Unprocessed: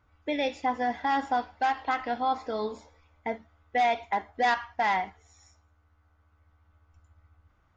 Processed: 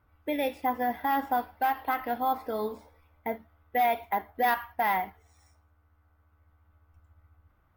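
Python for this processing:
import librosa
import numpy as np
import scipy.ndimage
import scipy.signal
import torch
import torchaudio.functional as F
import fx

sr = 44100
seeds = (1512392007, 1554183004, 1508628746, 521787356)

y = fx.high_shelf(x, sr, hz=3900.0, db=-10.0)
y = np.repeat(scipy.signal.resample_poly(y, 1, 3), 3)[:len(y)]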